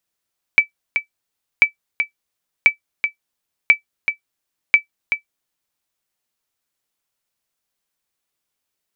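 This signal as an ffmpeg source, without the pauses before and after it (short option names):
-f lavfi -i "aevalsrc='0.891*(sin(2*PI*2310*mod(t,1.04))*exp(-6.91*mod(t,1.04)/0.11)+0.398*sin(2*PI*2310*max(mod(t,1.04)-0.38,0))*exp(-6.91*max(mod(t,1.04)-0.38,0)/0.11))':d=5.2:s=44100"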